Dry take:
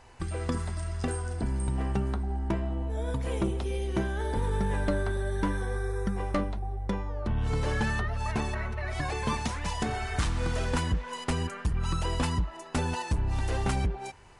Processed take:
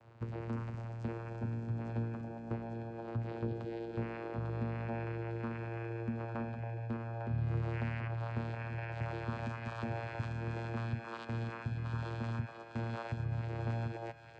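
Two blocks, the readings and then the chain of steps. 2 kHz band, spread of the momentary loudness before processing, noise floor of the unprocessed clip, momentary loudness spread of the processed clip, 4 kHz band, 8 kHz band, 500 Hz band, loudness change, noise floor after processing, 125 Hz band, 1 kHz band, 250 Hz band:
-9.0 dB, 4 LU, -44 dBFS, 4 LU, -16.5 dB, under -25 dB, -8.5 dB, -8.0 dB, -49 dBFS, -5.5 dB, -9.5 dB, -7.5 dB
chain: steep low-pass 5.8 kHz; band-stop 4.3 kHz, Q 5.1; dynamic bell 1.5 kHz, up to +5 dB, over -45 dBFS, Q 0.95; peak limiter -26.5 dBFS, peak gain reduction 10 dB; vocoder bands 8, saw 115 Hz; on a send: thinning echo 851 ms, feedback 65%, high-pass 1.2 kHz, level -4.5 dB

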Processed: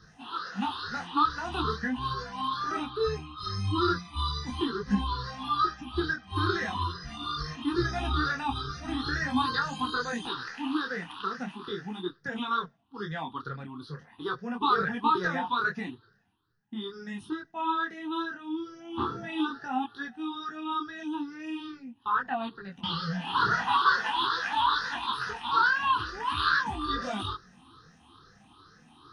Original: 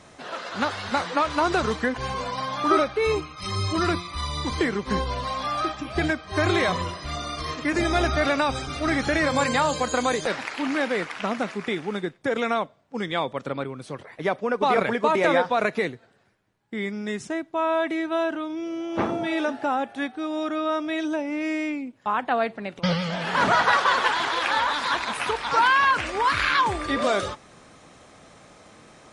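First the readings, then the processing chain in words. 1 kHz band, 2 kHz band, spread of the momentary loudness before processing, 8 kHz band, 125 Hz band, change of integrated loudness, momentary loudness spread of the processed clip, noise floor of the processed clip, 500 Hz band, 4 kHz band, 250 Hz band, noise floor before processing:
-4.5 dB, -5.5 dB, 10 LU, -13.0 dB, -3.5 dB, -5.5 dB, 12 LU, -59 dBFS, -12.5 dB, -3.5 dB, -5.5 dB, -51 dBFS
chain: drifting ripple filter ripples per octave 0.58, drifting +2.3 Hz, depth 18 dB; static phaser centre 2.2 kHz, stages 6; detune thickener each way 14 cents; trim -2.5 dB

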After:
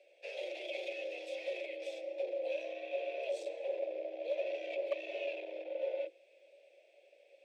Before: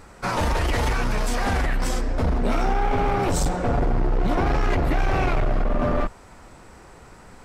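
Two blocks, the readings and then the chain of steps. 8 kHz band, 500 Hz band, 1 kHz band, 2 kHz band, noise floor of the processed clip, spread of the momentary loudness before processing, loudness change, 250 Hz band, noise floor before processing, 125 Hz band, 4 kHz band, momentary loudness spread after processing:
under -25 dB, -8.5 dB, -27.5 dB, -16.5 dB, -66 dBFS, 3 LU, -15.5 dB, -28.0 dB, -47 dBFS, under -40 dB, -14.0 dB, 5 LU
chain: vowel filter i; high-order bell 890 Hz -10.5 dB; hum notches 50/100/150/200/250 Hz; hard clipper -24.5 dBFS, distortion -30 dB; frequency shift +290 Hz; trim -2 dB

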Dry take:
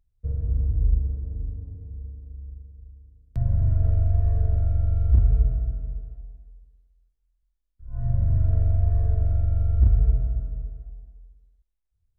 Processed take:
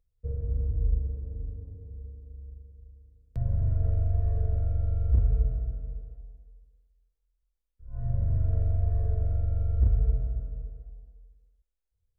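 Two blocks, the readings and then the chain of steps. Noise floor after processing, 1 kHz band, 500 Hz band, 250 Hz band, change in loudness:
-81 dBFS, no reading, -1.0 dB, -5.0 dB, -5.0 dB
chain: peaking EQ 490 Hz +12.5 dB 0.27 oct; trim -5 dB

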